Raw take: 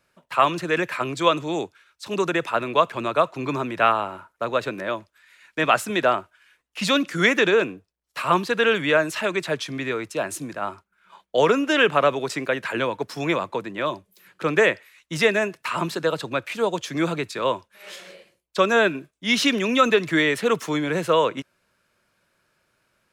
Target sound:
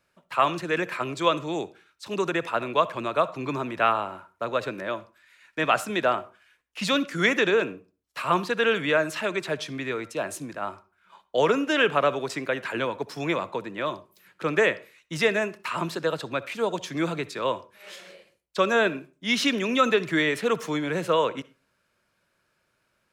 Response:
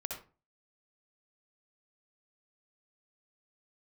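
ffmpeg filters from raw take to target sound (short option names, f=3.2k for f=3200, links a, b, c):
-filter_complex "[0:a]asplit=2[a][b];[1:a]atrim=start_sample=2205,lowpass=8.3k[c];[b][c]afir=irnorm=-1:irlink=0,volume=-14.5dB[d];[a][d]amix=inputs=2:normalize=0,volume=-4.5dB"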